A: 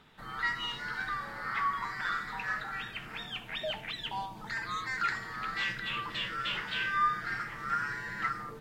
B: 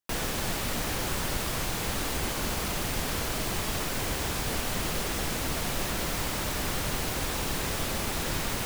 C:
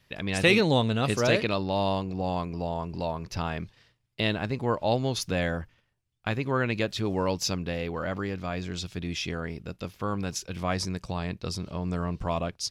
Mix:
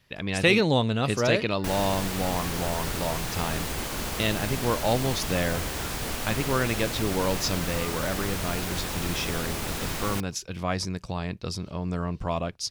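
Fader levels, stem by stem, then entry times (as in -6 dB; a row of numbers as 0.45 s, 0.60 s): -16.0 dB, -1.0 dB, +0.5 dB; 0.80 s, 1.55 s, 0.00 s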